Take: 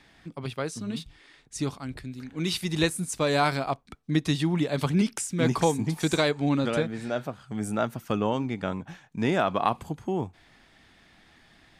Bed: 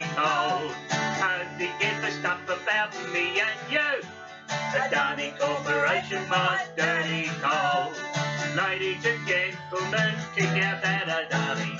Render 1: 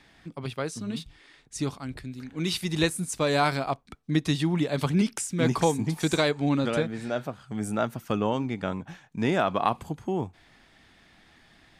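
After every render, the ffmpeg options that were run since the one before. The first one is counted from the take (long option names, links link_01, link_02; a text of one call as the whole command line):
ffmpeg -i in.wav -af anull out.wav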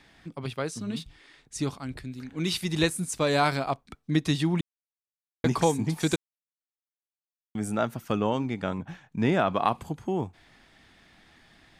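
ffmpeg -i in.wav -filter_complex "[0:a]asettb=1/sr,asplit=3[link_01][link_02][link_03];[link_01]atrim=end=8.784[link_04];[link_02]atrim=start=8.78:end=9.53,asetpts=PTS-STARTPTS,afade=type=in:duration=0.004:curve=qsin,afade=type=out:start_time=0.746:duration=0.004:curve=qsin,bass=frequency=250:gain=3,treble=frequency=4000:gain=-5[link_05];[link_03]atrim=start=9.526[link_06];[link_04][link_05]acrossfade=duration=0.004:curve1=hsin:curve2=qsin[link_07];[link_07][link_06]acrossfade=duration=0.004:curve1=qsin:curve2=hsin,asplit=5[link_08][link_09][link_10][link_11][link_12];[link_08]atrim=end=4.61,asetpts=PTS-STARTPTS,afade=type=out:start_time=4.606:duration=0.004:curve=hsin[link_13];[link_09]atrim=start=4.61:end=5.44,asetpts=PTS-STARTPTS,volume=0[link_14];[link_10]atrim=start=5.44:end=6.16,asetpts=PTS-STARTPTS,afade=type=in:duration=0.004:curve=hsin,afade=type=out:start_time=0.716:duration=0.004:curve=hsin[link_15];[link_11]atrim=start=6.16:end=7.55,asetpts=PTS-STARTPTS,volume=0[link_16];[link_12]atrim=start=7.55,asetpts=PTS-STARTPTS,afade=type=in:duration=0.004:curve=hsin[link_17];[link_13][link_14][link_15][link_16][link_17]concat=n=5:v=0:a=1" out.wav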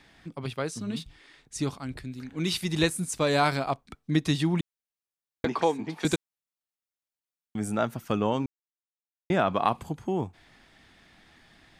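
ffmpeg -i in.wav -filter_complex "[0:a]asettb=1/sr,asplit=3[link_01][link_02][link_03];[link_01]atrim=end=5.454[link_04];[link_02]atrim=start=5.45:end=6.05,asetpts=PTS-STARTPTS,afade=type=in:duration=0.004:curve=qsin,afade=type=out:start_time=0.596:duration=0.004:curve=qsin,acrossover=split=240 4400:gain=0.112 1 0.126[link_05][link_06][link_07];[link_05][link_06][link_07]amix=inputs=3:normalize=0[link_08];[link_03]atrim=start=6.046[link_09];[link_04][link_08]acrossfade=duration=0.004:curve1=hsin:curve2=qsin[link_10];[link_10][link_09]acrossfade=duration=0.004:curve1=qsin:curve2=hsin,asplit=3[link_11][link_12][link_13];[link_11]atrim=end=8.46,asetpts=PTS-STARTPTS,afade=type=out:start_time=8.456:duration=0.004:curve=hsin[link_14];[link_12]atrim=start=8.46:end=9.3,asetpts=PTS-STARTPTS,volume=0[link_15];[link_13]atrim=start=9.3,asetpts=PTS-STARTPTS,afade=type=in:duration=0.004:curve=hsin[link_16];[link_14][link_15][link_16]concat=n=3:v=0:a=1" out.wav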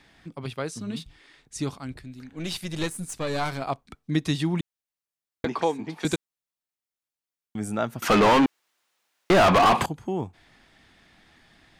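ffmpeg -i in.wav -filter_complex "[0:a]asettb=1/sr,asplit=3[link_01][link_02][link_03];[link_01]atrim=end=1.934[link_04];[link_02]atrim=start=1.93:end=3.62,asetpts=PTS-STARTPTS,afade=type=in:duration=0.004:curve=qsin,afade=type=out:start_time=1.686:duration=0.004:curve=qsin,aeval=exprs='(tanh(10*val(0)+0.6)-tanh(0.6))/10':channel_layout=same[link_05];[link_03]atrim=start=3.616[link_06];[link_04][link_05]acrossfade=duration=0.004:curve1=hsin:curve2=qsin[link_07];[link_07][link_06]acrossfade=duration=0.004:curve1=qsin:curve2=hsin,asettb=1/sr,asplit=3[link_08][link_09][link_10];[link_08]atrim=end=8.024[link_11];[link_09]atrim=start=8.02:end=9.86,asetpts=PTS-STARTPTS,afade=type=in:duration=0.004:curve=qsin,afade=type=out:start_time=1.836:duration=0.004:curve=qsin,asplit=2[link_12][link_13];[link_13]highpass=frequency=720:poles=1,volume=36dB,asoftclip=type=tanh:threshold=-10dB[link_14];[link_12][link_14]amix=inputs=2:normalize=0,lowpass=frequency=2800:poles=1,volume=-6dB[link_15];[link_10]atrim=start=9.856[link_16];[link_11][link_15]acrossfade=duration=0.004:curve1=hsin:curve2=qsin[link_17];[link_17][link_16]acrossfade=duration=0.004:curve1=qsin:curve2=hsin" out.wav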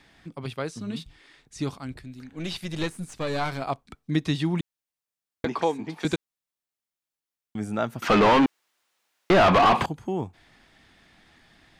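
ffmpeg -i in.wav -filter_complex "[0:a]acrossover=split=5300[link_01][link_02];[link_02]acompressor=threshold=-48dB:ratio=4:attack=1:release=60[link_03];[link_01][link_03]amix=inputs=2:normalize=0" out.wav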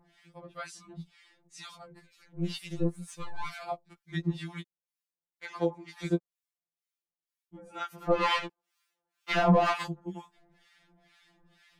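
ffmpeg -i in.wav -filter_complex "[0:a]acrossover=split=1000[link_01][link_02];[link_01]aeval=exprs='val(0)*(1-1/2+1/2*cos(2*PI*2.1*n/s))':channel_layout=same[link_03];[link_02]aeval=exprs='val(0)*(1-1/2-1/2*cos(2*PI*2.1*n/s))':channel_layout=same[link_04];[link_03][link_04]amix=inputs=2:normalize=0,afftfilt=real='re*2.83*eq(mod(b,8),0)':imag='im*2.83*eq(mod(b,8),0)':win_size=2048:overlap=0.75" out.wav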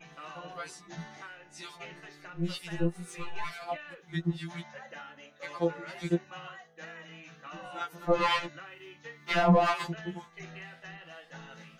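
ffmpeg -i in.wav -i bed.wav -filter_complex "[1:a]volume=-21dB[link_01];[0:a][link_01]amix=inputs=2:normalize=0" out.wav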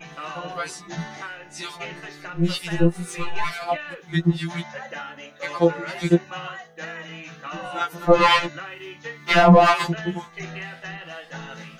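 ffmpeg -i in.wav -af "volume=11dB,alimiter=limit=-3dB:level=0:latency=1" out.wav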